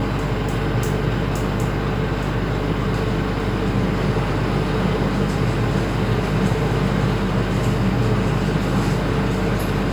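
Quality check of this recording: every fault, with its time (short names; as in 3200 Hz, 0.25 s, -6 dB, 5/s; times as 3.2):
hum 50 Hz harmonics 5 -25 dBFS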